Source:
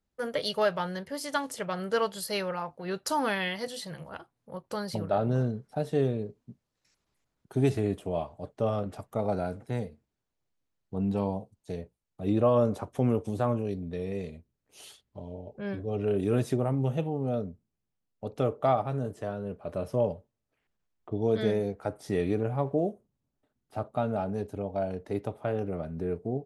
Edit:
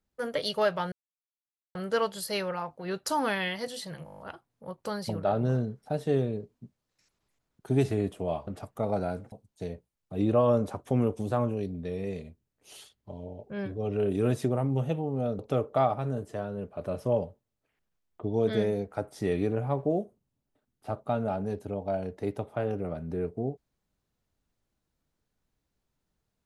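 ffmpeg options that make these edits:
-filter_complex "[0:a]asplit=13[a][b][c][d][e][f][g][h][i][j][k][l][m];[a]atrim=end=0.92,asetpts=PTS-STARTPTS,afade=t=out:st=0.916:d=0.004:c=hsin[n];[b]atrim=start=0.92:end=1.75,asetpts=PTS-STARTPTS,volume=0[o];[c]atrim=start=1.75:end=4.072,asetpts=PTS-STARTPTS,afade=t=in:d=0.004:c=hsin[p];[d]atrim=start=4.048:end=4.072[q];[e]atrim=start=4.048:end=4.072[r];[f]atrim=start=4.048:end=4.072[s];[g]atrim=start=4.048:end=4.072[t];[h]atrim=start=4.048:end=4.072[u];[i]atrim=start=4.048:end=4.072[v];[j]atrim=start=4.048:end=8.332[w];[k]atrim=start=8.828:end=9.682[x];[l]atrim=start=11.398:end=17.472[y];[m]atrim=start=18.268[z];[n][o][p]concat=n=3:v=0:a=1[aa];[aa][q]acrossfade=d=0.004:c1=hsin:c2=hsin[ab];[ab][r]acrossfade=d=0.004:c1=hsin:c2=hsin[ac];[ac][s]acrossfade=d=0.004:c1=hsin:c2=hsin[ad];[ad][t]acrossfade=d=0.004:c1=hsin:c2=hsin[ae];[ae][u]acrossfade=d=0.004:c1=hsin:c2=hsin[af];[af][v]acrossfade=d=0.004:c1=hsin:c2=hsin[ag];[ag][w]acrossfade=d=0.004:c1=hsin:c2=hsin[ah];[ah][x]acrossfade=d=0.004:c1=hsin:c2=hsin[ai];[ai][y]acrossfade=d=0.004:c1=hsin:c2=hsin[aj];[aj][z]acrossfade=d=0.004:c1=hsin:c2=hsin"

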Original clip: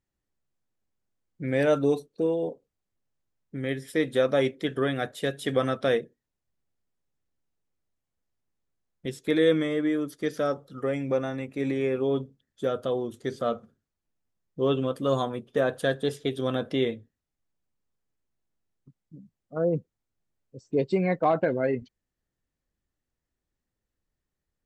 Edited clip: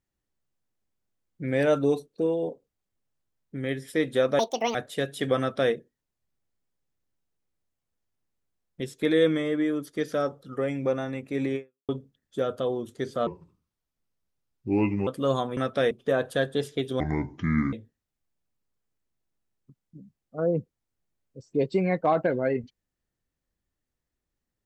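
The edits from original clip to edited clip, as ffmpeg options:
-filter_complex "[0:a]asplit=10[a][b][c][d][e][f][g][h][i][j];[a]atrim=end=4.394[k];[b]atrim=start=4.39:end=5,asetpts=PTS-STARTPTS,asetrate=75411,aresample=44100[l];[c]atrim=start=4.996:end=12.14,asetpts=PTS-STARTPTS,afade=t=out:st=6.814:d=0.33:c=exp[m];[d]atrim=start=12.14:end=13.524,asetpts=PTS-STARTPTS,afade=t=in:d=0.004:c=hsin[n];[e]atrim=start=13.52:end=14.89,asetpts=PTS-STARTPTS,asetrate=33516,aresample=44100,atrim=end_sample=79496,asetpts=PTS-STARTPTS[o];[f]atrim=start=14.886:end=15.392[p];[g]atrim=start=5.638:end=5.982[q];[h]atrim=start=15.388:end=16.484[r];[i]atrim=start=16.48:end=16.91,asetpts=PTS-STARTPTS,asetrate=26019,aresample=44100[s];[j]atrim=start=16.906[t];[k][l]acrossfade=d=0.004:c1=hsin:c2=hsin[u];[m][n]concat=n=2:v=0:a=1[v];[u][v]acrossfade=d=0.004:c1=hsin:c2=hsin[w];[w][o]acrossfade=d=0.004:c1=hsin:c2=hsin[x];[x][p]acrossfade=d=0.004:c1=hsin:c2=hsin[y];[y][q]acrossfade=d=0.004:c1=hsin:c2=hsin[z];[z][r]acrossfade=d=0.004:c1=hsin:c2=hsin[aa];[aa][s]acrossfade=d=0.004:c1=hsin:c2=hsin[ab];[ab][t]acrossfade=d=0.004:c1=hsin:c2=hsin"

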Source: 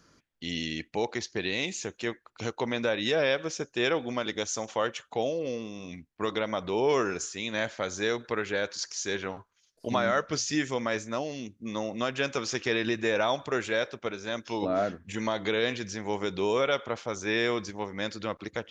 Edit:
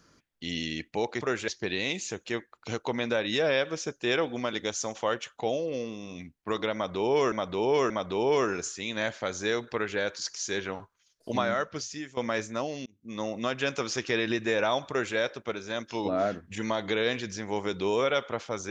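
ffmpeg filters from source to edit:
-filter_complex "[0:a]asplit=7[a][b][c][d][e][f][g];[a]atrim=end=1.212[h];[b]atrim=start=13.458:end=13.732[i];[c]atrim=start=1.208:end=7.052[j];[d]atrim=start=6.468:end=7.052[k];[e]atrim=start=6.468:end=10.74,asetpts=PTS-STARTPTS,afade=t=out:st=3.422:d=0.85:silence=0.141254[l];[f]atrim=start=10.74:end=11.43,asetpts=PTS-STARTPTS,afade=t=in:d=0.004:c=hsin:silence=0.141254,afade=t=out:st=0.686:d=0.004:c=hsin[m];[g]atrim=start=11.43,asetpts=PTS-STARTPTS,afade=t=in:d=0.38[n];[h][i]acrossfade=d=0.004:c1=hsin:c2=hsin[o];[o][j]acrossfade=d=0.004:c1=hsin:c2=hsin[p];[p][k]acrossfade=d=0.004:c1=hsin:c2=hsin[q];[l][m][n]concat=n=3:v=0:a=1[r];[q][r]acrossfade=d=0.004:c1=hsin:c2=hsin"

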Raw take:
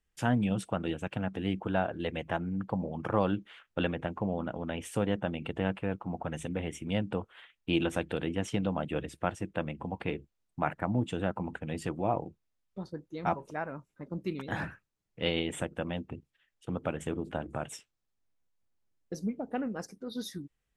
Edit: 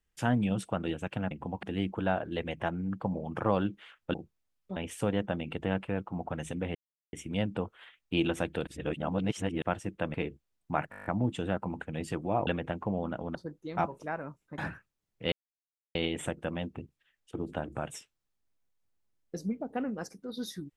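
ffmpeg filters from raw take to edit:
-filter_complex "[0:a]asplit=21[a][b][c][d][e][f][g][h][i][j][k][l][m][n][o][p][q][r][s][t][u];[a]atrim=end=1.312[v];[b]atrim=start=9.698:end=10.022[w];[c]atrim=start=1.308:end=3.822[x];[d]atrim=start=12.208:end=12.832[y];[e]atrim=start=4.698:end=6.69,asetpts=PTS-STARTPTS,afade=t=out:st=1.988:d=0.004:c=hsin,apad=pad_dur=0.38[z];[f]atrim=start=6.69:end=8.232,asetpts=PTS-STARTPTS,afade=t=in:d=0.004:c=hsin[aa];[g]atrim=start=8.228:end=9.182,asetpts=PTS-STARTPTS,areverse[ab];[h]atrim=start=9.178:end=9.702[ac];[i]atrim=start=10.018:end=10.812[ad];[j]atrim=start=10.788:end=10.812[ae];[k]atrim=start=10.788:end=10.812[af];[l]atrim=start=10.788:end=10.812[ag];[m]atrim=start=10.788:end=10.812[ah];[n]atrim=start=10.788:end=10.812[ai];[o]atrim=start=10.788:end=10.812[aj];[p]atrim=start=10.788:end=12.212[ak];[q]atrim=start=3.818:end=4.702[al];[r]atrim=start=12.828:end=14.062[am];[s]atrim=start=14.548:end=15.29,asetpts=PTS-STARTPTS,afade=t=out:st=0.738:d=0.004:c=hsin,apad=pad_dur=0.63[an];[t]atrim=start=15.29:end=16.692,asetpts=PTS-STARTPTS,afade=t=in:d=0.004:c=hsin[ao];[u]atrim=start=17.128[ap];[v][w]acrossfade=d=0.004:c1=hsin:c2=hsin[aq];[aq][x]acrossfade=d=0.004:c1=hsin:c2=hsin[ar];[ar][y]acrossfade=d=0.004:c1=hsin:c2=hsin[as];[z][aa]concat=n=2:v=0:a=1[at];[as][at]acrossfade=d=0.004:c1=hsin:c2=hsin[au];[au][ab]acrossfade=d=0.004:c1=hsin:c2=hsin[av];[av][ac]acrossfade=d=0.004:c1=hsin:c2=hsin[aw];[aw][ad]acrossfade=d=0.004:c1=hsin:c2=hsin[ax];[ax][ae]acrossfade=d=0.004:c1=hsin:c2=hsin[ay];[ay][af]acrossfade=d=0.004:c1=hsin:c2=hsin[az];[az][ag]acrossfade=d=0.004:c1=hsin:c2=hsin[ba];[ba][ah]acrossfade=d=0.004:c1=hsin:c2=hsin[bb];[bb][ai]acrossfade=d=0.004:c1=hsin:c2=hsin[bc];[bc][aj]acrossfade=d=0.004:c1=hsin:c2=hsin[bd];[bd][ak]acrossfade=d=0.004:c1=hsin:c2=hsin[be];[be][al]acrossfade=d=0.004:c1=hsin:c2=hsin[bf];[bf][am]acrossfade=d=0.004:c1=hsin:c2=hsin[bg];[an][ao]concat=n=2:v=0:a=1[bh];[bg][bh]acrossfade=d=0.004:c1=hsin:c2=hsin[bi];[bi][ap]acrossfade=d=0.004:c1=hsin:c2=hsin"

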